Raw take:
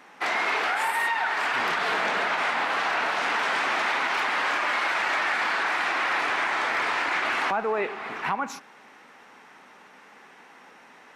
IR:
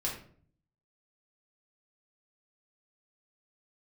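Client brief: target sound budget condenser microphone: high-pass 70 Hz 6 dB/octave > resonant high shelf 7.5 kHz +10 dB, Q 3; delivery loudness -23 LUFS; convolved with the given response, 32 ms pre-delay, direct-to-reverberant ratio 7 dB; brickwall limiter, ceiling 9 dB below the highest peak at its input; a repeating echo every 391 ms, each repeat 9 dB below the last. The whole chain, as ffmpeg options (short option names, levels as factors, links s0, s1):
-filter_complex "[0:a]alimiter=limit=0.075:level=0:latency=1,aecho=1:1:391|782|1173|1564:0.355|0.124|0.0435|0.0152,asplit=2[s0][s1];[1:a]atrim=start_sample=2205,adelay=32[s2];[s1][s2]afir=irnorm=-1:irlink=0,volume=0.282[s3];[s0][s3]amix=inputs=2:normalize=0,highpass=f=70:p=1,highshelf=f=7500:t=q:w=3:g=10,volume=2"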